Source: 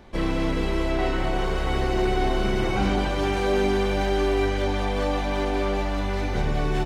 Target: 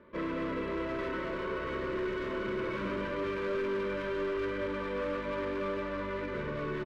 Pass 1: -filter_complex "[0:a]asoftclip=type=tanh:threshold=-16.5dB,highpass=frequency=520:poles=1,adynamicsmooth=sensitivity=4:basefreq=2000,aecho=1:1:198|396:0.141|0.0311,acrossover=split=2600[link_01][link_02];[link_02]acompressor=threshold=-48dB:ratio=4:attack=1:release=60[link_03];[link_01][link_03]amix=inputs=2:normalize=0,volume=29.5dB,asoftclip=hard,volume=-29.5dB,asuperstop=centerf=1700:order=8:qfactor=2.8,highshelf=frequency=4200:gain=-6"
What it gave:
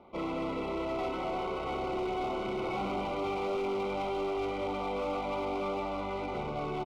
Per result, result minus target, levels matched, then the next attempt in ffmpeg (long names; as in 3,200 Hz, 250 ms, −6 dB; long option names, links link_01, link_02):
soft clipping: distortion +14 dB; 8,000 Hz band +5.0 dB; 2,000 Hz band −5.0 dB
-filter_complex "[0:a]asoftclip=type=tanh:threshold=-8dB,highpass=frequency=520:poles=1,adynamicsmooth=sensitivity=4:basefreq=2000,aecho=1:1:198|396:0.141|0.0311,acrossover=split=2600[link_01][link_02];[link_02]acompressor=threshold=-48dB:ratio=4:attack=1:release=60[link_03];[link_01][link_03]amix=inputs=2:normalize=0,volume=29.5dB,asoftclip=hard,volume=-29.5dB,asuperstop=centerf=1700:order=8:qfactor=2.8,highshelf=frequency=4200:gain=-6"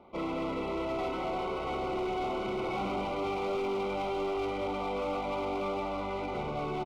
8,000 Hz band +5.5 dB; 2,000 Hz band −5.0 dB
-filter_complex "[0:a]asoftclip=type=tanh:threshold=-8dB,highpass=frequency=520:poles=1,adynamicsmooth=sensitivity=4:basefreq=2000,aecho=1:1:198|396:0.141|0.0311,acrossover=split=2600[link_01][link_02];[link_02]acompressor=threshold=-48dB:ratio=4:attack=1:release=60[link_03];[link_01][link_03]amix=inputs=2:normalize=0,volume=29.5dB,asoftclip=hard,volume=-29.5dB,asuperstop=centerf=1700:order=8:qfactor=2.8,highshelf=frequency=4200:gain=-15.5"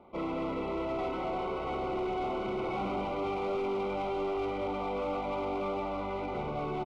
2,000 Hz band −6.5 dB
-filter_complex "[0:a]asoftclip=type=tanh:threshold=-8dB,highpass=frequency=520:poles=1,adynamicsmooth=sensitivity=4:basefreq=2000,aecho=1:1:198|396:0.141|0.0311,acrossover=split=2600[link_01][link_02];[link_02]acompressor=threshold=-48dB:ratio=4:attack=1:release=60[link_03];[link_01][link_03]amix=inputs=2:normalize=0,volume=29.5dB,asoftclip=hard,volume=-29.5dB,asuperstop=centerf=770:order=8:qfactor=2.8,highshelf=frequency=4200:gain=-15.5"